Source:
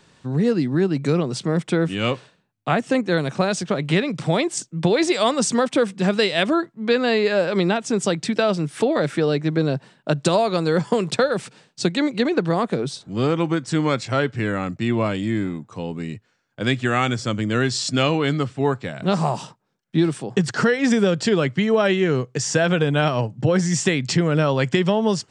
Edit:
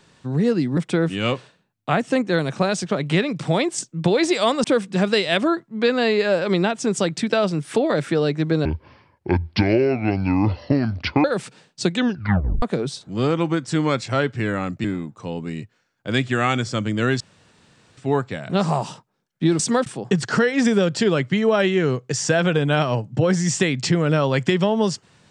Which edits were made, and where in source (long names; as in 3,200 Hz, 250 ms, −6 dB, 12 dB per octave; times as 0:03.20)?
0:00.77–0:01.56: remove
0:05.43–0:05.70: move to 0:20.12
0:09.71–0:11.24: play speed 59%
0:11.93: tape stop 0.69 s
0:14.84–0:15.37: remove
0:17.73–0:18.50: fill with room tone